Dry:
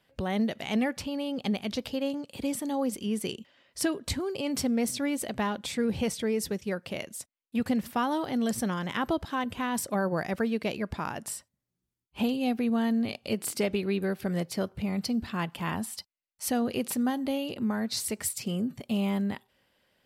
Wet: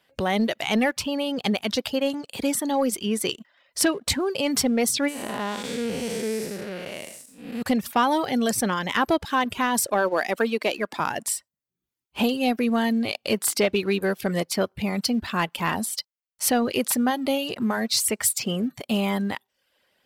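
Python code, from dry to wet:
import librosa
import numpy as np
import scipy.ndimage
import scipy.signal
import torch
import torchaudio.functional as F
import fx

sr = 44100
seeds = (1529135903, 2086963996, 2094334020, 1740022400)

y = fx.spec_blur(x, sr, span_ms=298.0, at=(5.07, 7.61), fade=0.02)
y = fx.highpass(y, sr, hz=230.0, slope=24, at=(9.87, 11.0))
y = fx.dereverb_blind(y, sr, rt60_s=0.54)
y = fx.low_shelf(y, sr, hz=240.0, db=-10.5)
y = fx.leveller(y, sr, passes=1)
y = y * 10.0 ** (6.5 / 20.0)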